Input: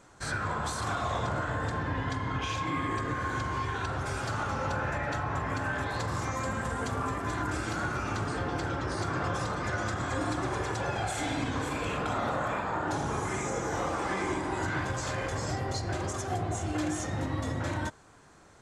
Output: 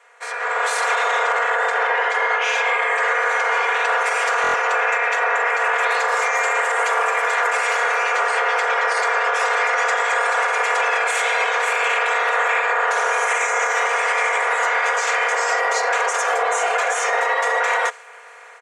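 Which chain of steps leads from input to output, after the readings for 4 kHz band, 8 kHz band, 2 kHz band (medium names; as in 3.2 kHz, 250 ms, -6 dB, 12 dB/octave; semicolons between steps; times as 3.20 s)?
+12.5 dB, +12.0 dB, +18.0 dB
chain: spectral peaks clipped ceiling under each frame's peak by 17 dB; elliptic high-pass 450 Hz, stop band 40 dB; resonant high shelf 3.1 kHz -11 dB, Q 1.5; comb 4.2 ms, depth 75%; dynamic bell 6.1 kHz, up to +7 dB, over -53 dBFS, Q 0.86; peak limiter -25 dBFS, peak gain reduction 8.5 dB; level rider gain up to 10 dB; buffer glitch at 4.42 s, samples 1024, times 4; trim +4.5 dB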